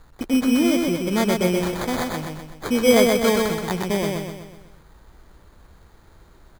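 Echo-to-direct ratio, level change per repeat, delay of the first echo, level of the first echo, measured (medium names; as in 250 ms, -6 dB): -2.0 dB, -6.0 dB, 126 ms, -3.0 dB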